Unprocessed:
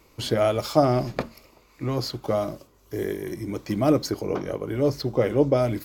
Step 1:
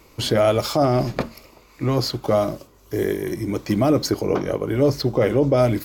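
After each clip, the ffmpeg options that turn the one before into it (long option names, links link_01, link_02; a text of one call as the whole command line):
ffmpeg -i in.wav -af "alimiter=limit=-14.5dB:level=0:latency=1:release=18,volume=6dB" out.wav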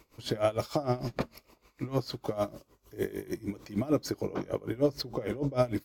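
ffmpeg -i in.wav -af "aeval=exprs='val(0)*pow(10,-19*(0.5-0.5*cos(2*PI*6.6*n/s))/20)':channel_layout=same,volume=-6dB" out.wav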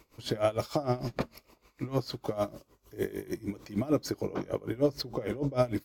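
ffmpeg -i in.wav -af anull out.wav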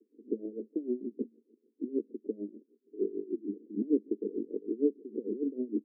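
ffmpeg -i in.wav -af "asuperpass=centerf=310:order=12:qfactor=1.3,volume=1.5dB" out.wav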